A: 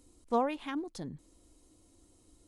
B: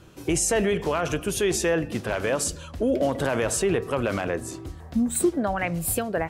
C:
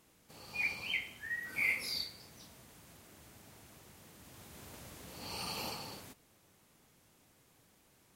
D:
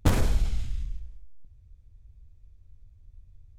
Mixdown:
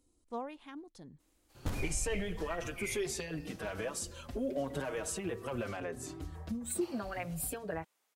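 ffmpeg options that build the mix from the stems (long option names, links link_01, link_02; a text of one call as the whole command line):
ffmpeg -i stem1.wav -i stem2.wav -i stem3.wav -i stem4.wav -filter_complex "[0:a]volume=-11dB[link_01];[1:a]acompressor=threshold=-32dB:ratio=2.5,asplit=2[link_02][link_03];[link_03]adelay=5.3,afreqshift=0.72[link_04];[link_02][link_04]amix=inputs=2:normalize=1,adelay=1550,volume=-2.5dB[link_05];[2:a]acontrast=59,highpass=600,acrossover=split=4400[link_06][link_07];[link_07]acompressor=threshold=-48dB:ratio=4:attack=1:release=60[link_08];[link_06][link_08]amix=inputs=2:normalize=0,adelay=1200,volume=-16dB,asplit=3[link_09][link_10][link_11];[link_09]atrim=end=5.64,asetpts=PTS-STARTPTS,afade=type=out:start_time=5.636:duration=0.004:curve=hsin[link_12];[link_10]atrim=start=5.64:end=6.81,asetpts=PTS-STARTPTS,volume=0[link_13];[link_11]atrim=start=6.81,asetpts=PTS-STARTPTS,afade=type=in:duration=0.004:curve=hsin[link_14];[link_12][link_13][link_14]concat=n=3:v=0:a=1[link_15];[3:a]adelay=1600,volume=-14.5dB[link_16];[link_01][link_05][link_15][link_16]amix=inputs=4:normalize=0" out.wav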